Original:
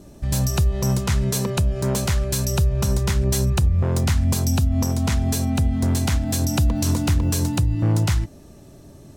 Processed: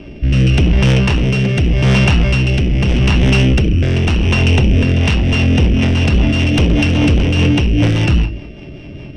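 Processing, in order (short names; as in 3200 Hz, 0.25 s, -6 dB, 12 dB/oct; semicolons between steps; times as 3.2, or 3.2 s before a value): sample sorter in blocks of 16 samples; LPF 4200 Hz 24 dB/oct; non-linear reverb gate 0.18 s falling, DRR 5.5 dB; in parallel at -4 dB: sine folder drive 12 dB, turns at -6 dBFS; on the sum: rotary speaker horn 0.85 Hz, later 5 Hz, at 4.65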